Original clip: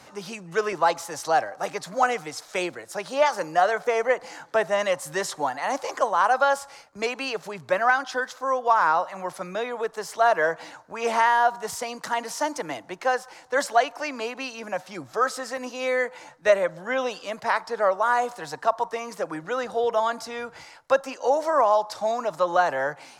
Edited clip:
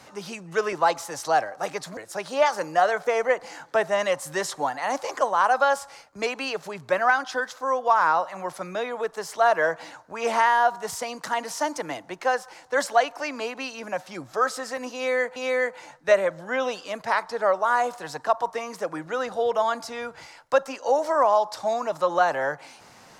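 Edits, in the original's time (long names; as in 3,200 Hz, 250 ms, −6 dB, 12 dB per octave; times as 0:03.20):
0:01.97–0:02.77: remove
0:15.74–0:16.16: repeat, 2 plays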